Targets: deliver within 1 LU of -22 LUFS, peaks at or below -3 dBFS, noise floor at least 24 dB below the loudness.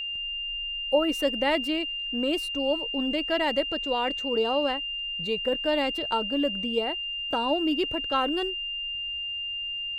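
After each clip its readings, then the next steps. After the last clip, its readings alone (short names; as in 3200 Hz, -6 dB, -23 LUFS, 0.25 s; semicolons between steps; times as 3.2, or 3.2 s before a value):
ticks 16/s; steady tone 2800 Hz; tone level -30 dBFS; loudness -27.0 LUFS; peak -11.5 dBFS; loudness target -22.0 LUFS
-> de-click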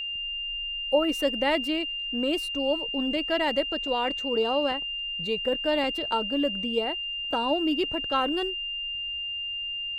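ticks 0/s; steady tone 2800 Hz; tone level -30 dBFS
-> notch 2800 Hz, Q 30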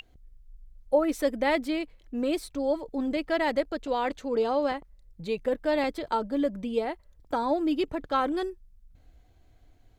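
steady tone none; loudness -29.0 LUFS; peak -12.5 dBFS; loudness target -22.0 LUFS
-> gain +7 dB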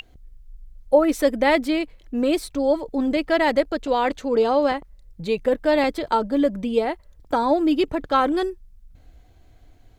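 loudness -22.0 LUFS; peak -5.5 dBFS; noise floor -52 dBFS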